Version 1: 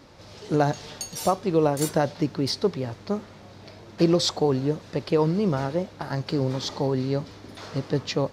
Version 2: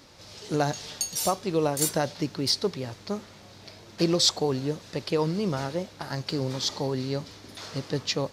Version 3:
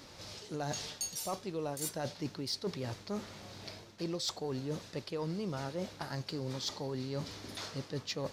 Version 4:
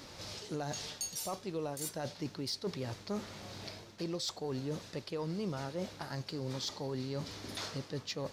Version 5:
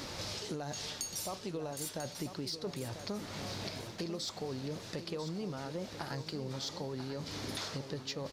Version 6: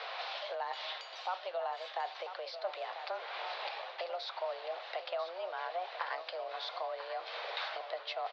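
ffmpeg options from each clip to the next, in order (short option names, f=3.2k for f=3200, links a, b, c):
-af "highshelf=f=2.6k:g=11,volume=-4.5dB"
-af "areverse,acompressor=threshold=-34dB:ratio=6,areverse,asoftclip=type=tanh:threshold=-24.5dB"
-af "alimiter=level_in=7dB:limit=-24dB:level=0:latency=1:release=411,volume=-7dB,volume=2.5dB"
-af "acompressor=threshold=-45dB:ratio=6,aecho=1:1:993|1986|2979|3972:0.316|0.114|0.041|0.0148,volume=8dB"
-af "highpass=f=400:t=q:w=0.5412,highpass=f=400:t=q:w=1.307,lowpass=f=3.6k:t=q:w=0.5176,lowpass=f=3.6k:t=q:w=0.7071,lowpass=f=3.6k:t=q:w=1.932,afreqshift=180,volume=5dB"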